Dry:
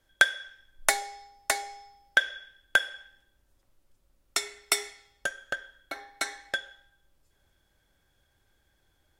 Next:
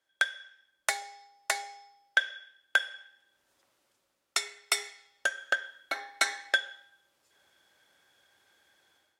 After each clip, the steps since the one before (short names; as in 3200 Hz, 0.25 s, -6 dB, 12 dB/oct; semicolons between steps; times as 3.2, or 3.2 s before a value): weighting filter A; AGC gain up to 14.5 dB; gain -8 dB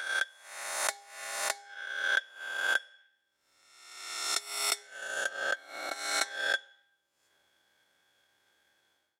spectral swells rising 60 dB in 1.17 s; dynamic EQ 2200 Hz, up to -6 dB, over -37 dBFS, Q 1.3; transient shaper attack +8 dB, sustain -5 dB; gain -7 dB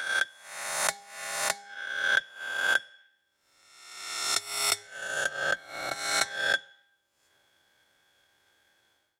octaver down 2 oct, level -5 dB; gain +3.5 dB